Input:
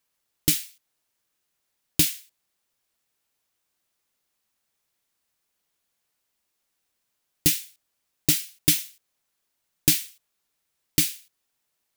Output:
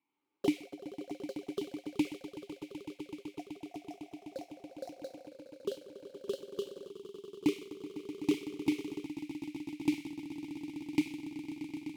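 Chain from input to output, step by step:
downward compressor 12 to 1, threshold −27 dBFS, peak gain reduction 14 dB
formant filter u
on a send: echo that builds up and dies away 126 ms, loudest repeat 8, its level −13 dB
on the sum: delay with pitch and tempo change per echo 86 ms, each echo +5 semitones, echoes 3, each echo −6 dB
one half of a high-frequency compander decoder only
level +13.5 dB

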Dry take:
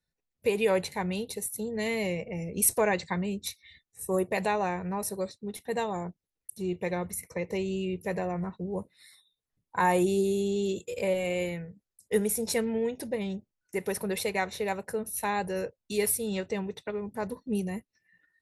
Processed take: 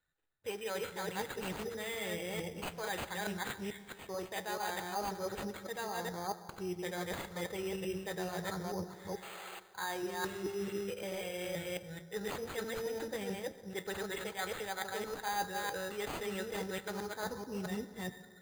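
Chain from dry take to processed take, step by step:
delay that plays each chunk backwards 218 ms, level −1.5 dB
graphic EQ with 15 bands 250 Hz −10 dB, 1,600 Hz +10 dB, 10,000 Hz −4 dB
reversed playback
downward compressor 12 to 1, threshold −34 dBFS, peak gain reduction 18.5 dB
reversed playback
flanger 0.2 Hz, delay 8.3 ms, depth 3.3 ms, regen −69%
sound drawn into the spectrogram noise, 0:09.22–0:09.60, 340–2,900 Hz −51 dBFS
hollow resonant body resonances 300/810/1,300 Hz, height 8 dB
convolution reverb RT60 1.8 s, pre-delay 72 ms, DRR 13.5 dB
bad sample-rate conversion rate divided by 8×, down none, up hold
level +2 dB

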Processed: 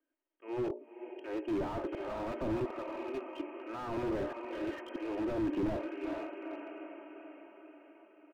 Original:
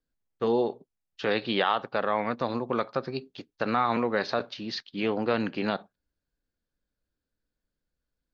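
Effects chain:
loose part that buzzes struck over −34 dBFS, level −20 dBFS
treble cut that deepens with the level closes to 1,800 Hz, closed at −25 dBFS
elliptic high-pass filter 300 Hz, stop band 40 dB
brickwall limiter −18 dBFS, peak gain reduction 6 dB
linear-phase brick-wall low-pass 3,300 Hz
mains-hum notches 60/120/180/240/300/360/420/480/540/600 Hz
comb filter 3.2 ms, depth 78%
volume swells 687 ms
low-shelf EQ 400 Hz +11.5 dB
on a send: feedback delay with all-pass diffusion 453 ms, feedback 58%, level −12.5 dB
on the sum: slew-rate limiting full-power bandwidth 11 Hz

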